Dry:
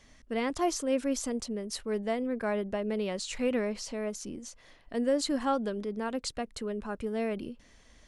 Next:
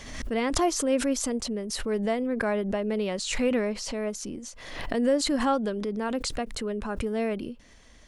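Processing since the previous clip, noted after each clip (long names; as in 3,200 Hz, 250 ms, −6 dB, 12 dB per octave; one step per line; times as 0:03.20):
background raised ahead of every attack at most 53 dB per second
level +3.5 dB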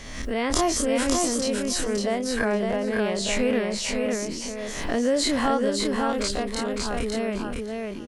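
every bin's largest magnitude spread in time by 60 ms
on a send: repeating echo 556 ms, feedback 16%, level −3.5 dB
on the sum: level −1.5 dB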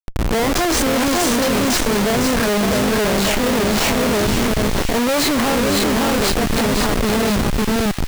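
comparator with hysteresis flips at −28.5 dBFS
delay with a high-pass on its return 506 ms, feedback 56%, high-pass 2,100 Hz, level −6 dB
level +8.5 dB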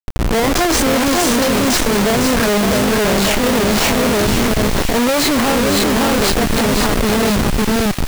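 bit reduction 5 bits
level +2.5 dB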